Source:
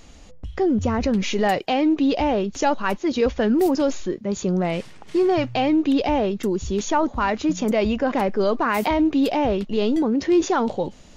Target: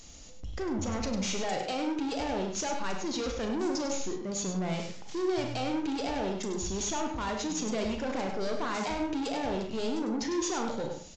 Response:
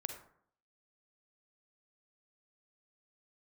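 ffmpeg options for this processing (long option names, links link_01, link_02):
-filter_complex "[0:a]bass=frequency=250:gain=1,treble=frequency=4000:gain=15,aresample=16000,asoftclip=type=tanh:threshold=-22.5dB,aresample=44100,aecho=1:1:100:0.398[link_01];[1:a]atrim=start_sample=2205,asetrate=61740,aresample=44100[link_02];[link_01][link_02]afir=irnorm=-1:irlink=0,volume=-2.5dB"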